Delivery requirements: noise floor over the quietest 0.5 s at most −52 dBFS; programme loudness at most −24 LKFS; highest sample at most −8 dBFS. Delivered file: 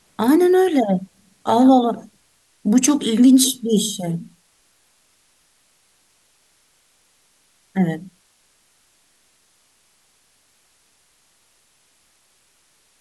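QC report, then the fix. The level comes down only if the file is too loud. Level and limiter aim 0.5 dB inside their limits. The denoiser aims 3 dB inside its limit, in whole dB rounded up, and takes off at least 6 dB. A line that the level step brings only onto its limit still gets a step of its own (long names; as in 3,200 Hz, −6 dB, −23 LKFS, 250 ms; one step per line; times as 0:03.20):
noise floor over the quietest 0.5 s −61 dBFS: in spec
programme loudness −17.0 LKFS: out of spec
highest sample −4.5 dBFS: out of spec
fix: level −7.5 dB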